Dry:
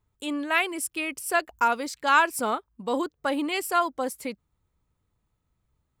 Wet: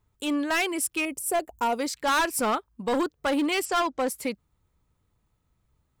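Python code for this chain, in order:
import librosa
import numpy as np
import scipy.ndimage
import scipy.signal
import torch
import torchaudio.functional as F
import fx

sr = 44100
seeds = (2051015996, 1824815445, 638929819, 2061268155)

y = fx.band_shelf(x, sr, hz=2400.0, db=-11.5, octaves=2.6, at=(1.05, 1.79))
y = fx.steep_lowpass(y, sr, hz=7800.0, slope=36, at=(3.65, 4.08))
y = np.clip(y, -10.0 ** (-24.0 / 20.0), 10.0 ** (-24.0 / 20.0))
y = F.gain(torch.from_numpy(y), 3.5).numpy()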